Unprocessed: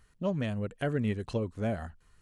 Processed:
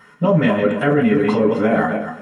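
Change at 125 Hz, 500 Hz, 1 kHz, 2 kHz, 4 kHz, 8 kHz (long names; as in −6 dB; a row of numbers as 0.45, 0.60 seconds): +10.5 dB, +18.0 dB, +20.0 dB, +18.5 dB, +13.0 dB, can't be measured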